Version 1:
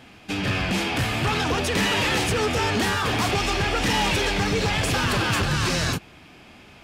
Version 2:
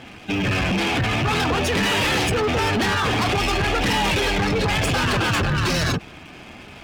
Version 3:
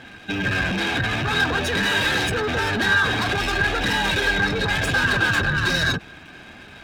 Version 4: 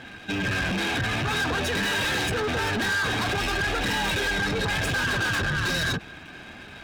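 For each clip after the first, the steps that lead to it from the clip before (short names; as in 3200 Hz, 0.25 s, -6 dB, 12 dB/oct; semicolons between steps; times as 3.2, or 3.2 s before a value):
spectral gate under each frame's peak -20 dB strong; sample leveller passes 3; gain -2.5 dB
small resonant body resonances 1600/3800 Hz, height 17 dB, ringing for 40 ms; gain -3.5 dB
soft clip -22.5 dBFS, distortion -11 dB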